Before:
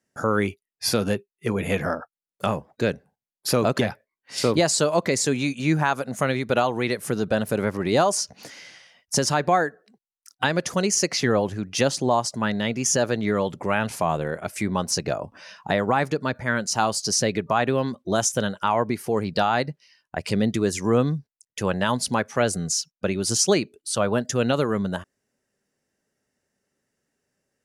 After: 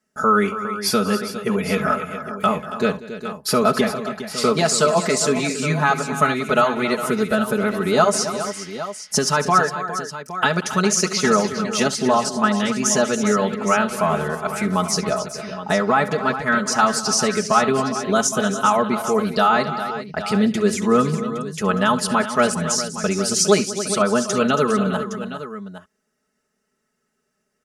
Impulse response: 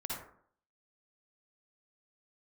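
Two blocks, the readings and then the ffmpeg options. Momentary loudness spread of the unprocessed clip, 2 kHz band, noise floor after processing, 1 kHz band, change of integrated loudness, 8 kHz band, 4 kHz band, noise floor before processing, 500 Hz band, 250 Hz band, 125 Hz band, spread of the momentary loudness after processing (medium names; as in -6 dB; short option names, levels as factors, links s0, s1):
8 LU, +5.0 dB, -73 dBFS, +6.0 dB, +4.0 dB, +3.0 dB, +3.0 dB, under -85 dBFS, +3.5 dB, +4.5 dB, +0.5 dB, 9 LU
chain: -filter_complex "[0:a]equalizer=f=1300:t=o:w=0.22:g=10.5,aecho=1:1:4.7:0.86,asplit=2[s0][s1];[s1]aecho=0:1:67|189|277|408|814:0.126|0.119|0.237|0.251|0.224[s2];[s0][s2]amix=inputs=2:normalize=0"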